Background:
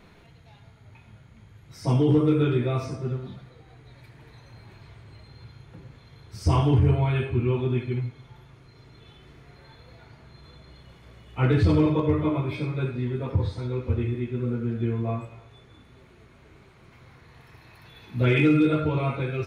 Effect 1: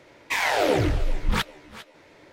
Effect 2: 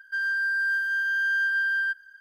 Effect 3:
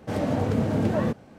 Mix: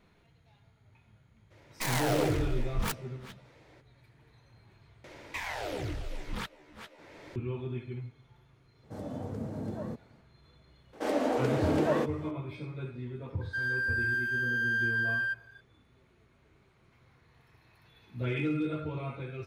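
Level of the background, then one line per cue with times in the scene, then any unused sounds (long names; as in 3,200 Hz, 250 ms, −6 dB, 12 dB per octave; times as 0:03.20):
background −11.5 dB
0:01.50: mix in 1 −8 dB, fades 0.02 s + stylus tracing distortion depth 0.35 ms
0:05.04: overwrite with 1 −13.5 dB + multiband upward and downward compressor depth 70%
0:08.83: mix in 3 −13 dB + parametric band 2,600 Hz −10.5 dB 1.5 octaves
0:10.93: mix in 3 −0.5 dB + Butterworth high-pass 270 Hz
0:13.41: mix in 2 −5 dB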